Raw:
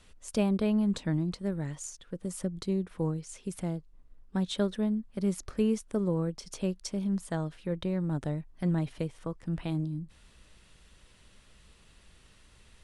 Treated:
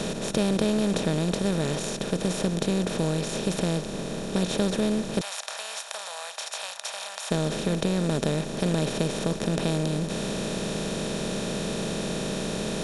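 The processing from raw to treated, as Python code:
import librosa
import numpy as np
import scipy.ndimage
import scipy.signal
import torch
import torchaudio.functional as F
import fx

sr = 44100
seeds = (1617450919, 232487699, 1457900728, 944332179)

y = fx.bin_compress(x, sr, power=0.2)
y = fx.cheby2_highpass(y, sr, hz=370.0, order=4, stop_db=40, at=(5.21, 7.31))
y = F.gain(torch.from_numpy(y), -1.5).numpy()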